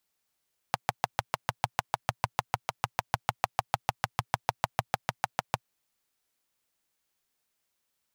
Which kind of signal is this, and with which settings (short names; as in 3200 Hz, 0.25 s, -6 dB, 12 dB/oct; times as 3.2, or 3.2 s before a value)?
single-cylinder engine model, steady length 4.87 s, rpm 800, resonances 120/800 Hz